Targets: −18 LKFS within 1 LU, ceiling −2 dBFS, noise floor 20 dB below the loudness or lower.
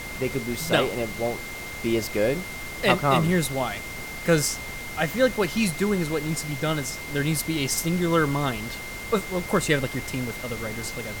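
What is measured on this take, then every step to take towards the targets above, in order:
interfering tone 2,100 Hz; level of the tone −36 dBFS; background noise floor −36 dBFS; target noise floor −46 dBFS; integrated loudness −25.5 LKFS; sample peak −6.0 dBFS; target loudness −18.0 LKFS
→ notch filter 2,100 Hz, Q 30
noise reduction from a noise print 10 dB
level +7.5 dB
brickwall limiter −2 dBFS

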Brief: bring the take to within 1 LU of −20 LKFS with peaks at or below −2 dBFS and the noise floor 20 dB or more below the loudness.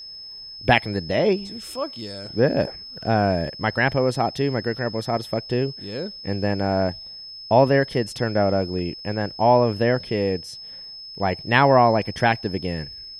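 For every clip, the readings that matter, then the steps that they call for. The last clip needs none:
crackle rate 25 per second; interfering tone 5,200 Hz; level of the tone −36 dBFS; integrated loudness −22.0 LKFS; sample peak −2.0 dBFS; target loudness −20.0 LKFS
→ click removal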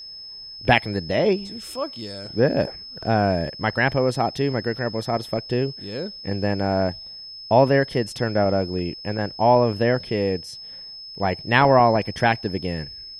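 crackle rate 0 per second; interfering tone 5,200 Hz; level of the tone −36 dBFS
→ notch filter 5,200 Hz, Q 30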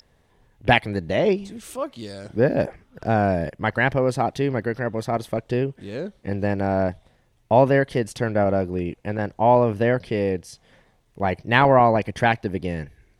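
interfering tone none found; integrated loudness −22.5 LKFS; sample peak −2.5 dBFS; target loudness −20.0 LKFS
→ level +2.5 dB
brickwall limiter −2 dBFS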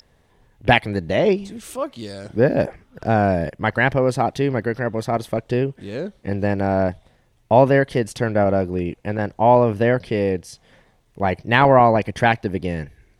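integrated loudness −20.0 LKFS; sample peak −2.0 dBFS; background noise floor −60 dBFS

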